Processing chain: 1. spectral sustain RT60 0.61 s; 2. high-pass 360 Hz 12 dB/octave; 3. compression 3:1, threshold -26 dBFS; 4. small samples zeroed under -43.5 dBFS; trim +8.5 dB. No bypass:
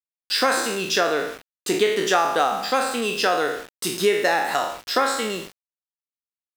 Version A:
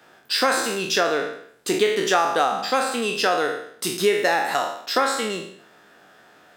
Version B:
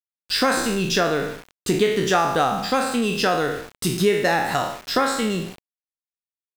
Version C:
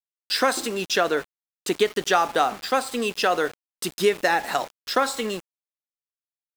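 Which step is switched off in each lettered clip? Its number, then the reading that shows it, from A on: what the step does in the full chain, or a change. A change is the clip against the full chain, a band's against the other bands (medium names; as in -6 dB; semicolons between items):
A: 4, distortion -23 dB; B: 2, momentary loudness spread change -1 LU; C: 1, loudness change -2.0 LU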